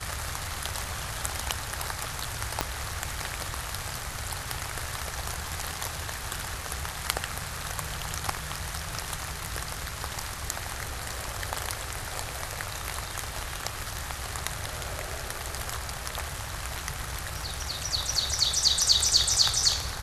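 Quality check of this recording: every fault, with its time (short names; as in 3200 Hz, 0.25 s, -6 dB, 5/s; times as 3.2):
2.61 pop -8 dBFS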